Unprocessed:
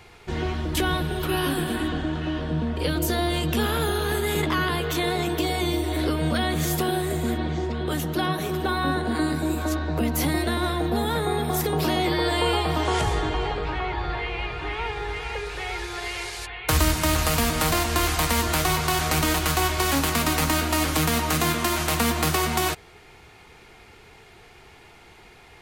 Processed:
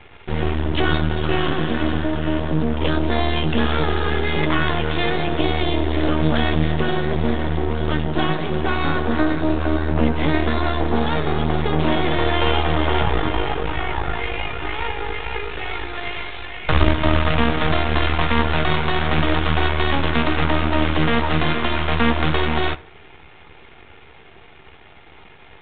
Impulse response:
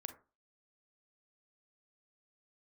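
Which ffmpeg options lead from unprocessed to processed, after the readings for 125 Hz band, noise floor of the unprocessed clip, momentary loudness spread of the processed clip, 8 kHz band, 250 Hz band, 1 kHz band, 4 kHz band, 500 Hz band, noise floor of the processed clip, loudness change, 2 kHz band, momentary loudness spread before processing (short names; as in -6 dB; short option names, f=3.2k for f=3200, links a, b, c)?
+5.0 dB, -50 dBFS, 7 LU, under -40 dB, +4.5 dB, +3.0 dB, +1.5 dB, +4.0 dB, -45 dBFS, +3.5 dB, +4.0 dB, 8 LU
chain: -filter_complex "[0:a]aeval=exprs='max(val(0),0)':c=same,asplit=2[a][b];[1:a]atrim=start_sample=2205,adelay=13[c];[b][c]afir=irnorm=-1:irlink=0,volume=-5.5dB[d];[a][d]amix=inputs=2:normalize=0,volume=7.5dB" -ar 8000 -c:a pcm_mulaw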